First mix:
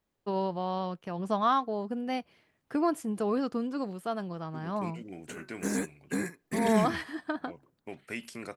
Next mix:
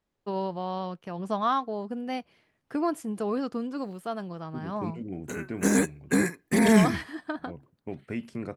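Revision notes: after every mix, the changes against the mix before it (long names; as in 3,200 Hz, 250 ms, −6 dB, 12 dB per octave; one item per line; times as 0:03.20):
second voice: add spectral tilt −4 dB per octave
background +8.5 dB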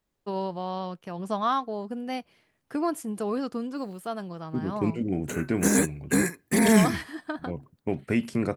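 second voice +8.5 dB
master: add high-shelf EQ 7,300 Hz +8.5 dB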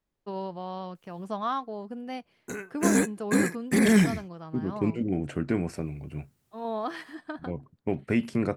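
first voice −4.0 dB
background: entry −2.80 s
master: add high-shelf EQ 7,300 Hz −8.5 dB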